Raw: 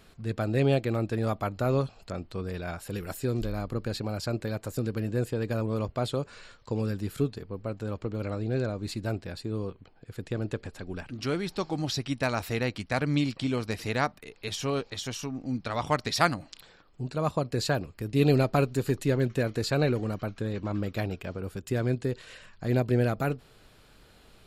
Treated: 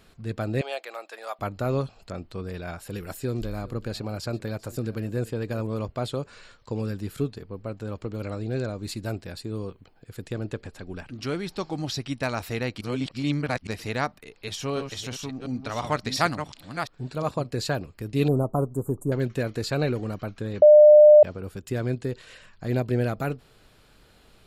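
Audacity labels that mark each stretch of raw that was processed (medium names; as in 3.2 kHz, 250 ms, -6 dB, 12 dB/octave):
0.610000	1.390000	high-pass 630 Hz 24 dB/octave
3.110000	5.670000	delay 392 ms -19.5 dB
7.950000	10.380000	treble shelf 6.3 kHz +7.5 dB
12.810000	13.670000	reverse
14.410000	17.500000	chunks repeated in reverse 352 ms, level -7 dB
18.280000	19.120000	elliptic band-stop 1.1–8.3 kHz
20.620000	21.230000	bleep 601 Hz -8 dBFS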